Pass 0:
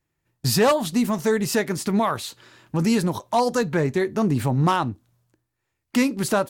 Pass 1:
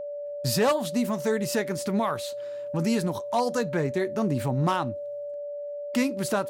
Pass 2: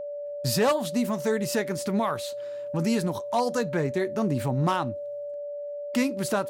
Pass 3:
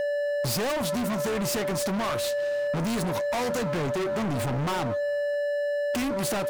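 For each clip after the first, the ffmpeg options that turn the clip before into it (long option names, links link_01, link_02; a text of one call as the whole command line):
ffmpeg -i in.wav -af "highpass=65,aeval=exprs='val(0)+0.0447*sin(2*PI*580*n/s)':channel_layout=same,volume=-5dB" out.wav
ffmpeg -i in.wav -af anull out.wav
ffmpeg -i in.wav -filter_complex "[0:a]asplit=2[link_01][link_02];[link_02]acompressor=threshold=-33dB:ratio=6,volume=3dB[link_03];[link_01][link_03]amix=inputs=2:normalize=0,volume=30.5dB,asoftclip=hard,volume=-30.5dB,volume=4.5dB" out.wav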